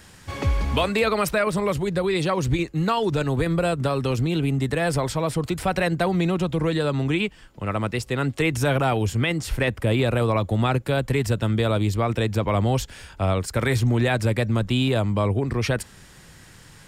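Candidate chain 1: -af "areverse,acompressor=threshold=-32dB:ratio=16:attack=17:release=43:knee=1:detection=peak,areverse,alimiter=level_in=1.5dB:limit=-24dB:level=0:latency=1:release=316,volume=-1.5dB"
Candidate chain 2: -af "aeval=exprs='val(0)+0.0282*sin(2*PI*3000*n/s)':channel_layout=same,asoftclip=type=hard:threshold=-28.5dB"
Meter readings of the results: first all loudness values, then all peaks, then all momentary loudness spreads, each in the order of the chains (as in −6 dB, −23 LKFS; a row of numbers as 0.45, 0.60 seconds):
−35.5, −30.0 LKFS; −25.5, −28.5 dBFS; 3, 1 LU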